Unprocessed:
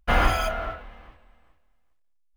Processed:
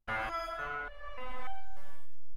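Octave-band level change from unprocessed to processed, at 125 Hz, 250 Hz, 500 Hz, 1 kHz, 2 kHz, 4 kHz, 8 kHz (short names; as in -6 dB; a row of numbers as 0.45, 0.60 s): -16.5 dB, -17.5 dB, -12.5 dB, -10.0 dB, -9.0 dB, -15.0 dB, under -15 dB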